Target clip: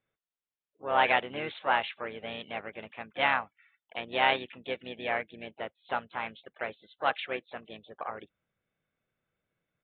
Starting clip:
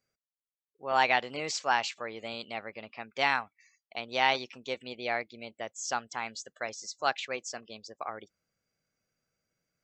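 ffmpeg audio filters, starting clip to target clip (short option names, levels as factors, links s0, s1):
-filter_complex "[0:a]asplit=3[s0][s1][s2];[s1]asetrate=33038,aresample=44100,atempo=1.33484,volume=0.355[s3];[s2]asetrate=58866,aresample=44100,atempo=0.749154,volume=0.158[s4];[s0][s3][s4]amix=inputs=3:normalize=0,aresample=8000,aresample=44100"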